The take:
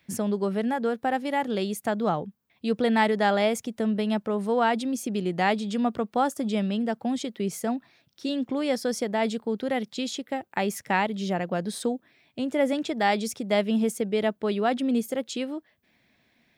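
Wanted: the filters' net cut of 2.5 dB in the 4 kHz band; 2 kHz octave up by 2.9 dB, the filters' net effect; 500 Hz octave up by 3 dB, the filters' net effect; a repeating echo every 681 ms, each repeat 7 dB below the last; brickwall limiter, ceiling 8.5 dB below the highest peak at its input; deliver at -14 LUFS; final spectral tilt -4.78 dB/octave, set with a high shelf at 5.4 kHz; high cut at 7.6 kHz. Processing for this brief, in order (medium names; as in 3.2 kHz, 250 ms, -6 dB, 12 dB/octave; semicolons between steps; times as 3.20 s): low-pass 7.6 kHz; peaking EQ 500 Hz +3.5 dB; peaking EQ 2 kHz +4 dB; peaking EQ 4 kHz -6.5 dB; treble shelf 5.4 kHz +4 dB; peak limiter -16.5 dBFS; feedback delay 681 ms, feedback 45%, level -7 dB; trim +12.5 dB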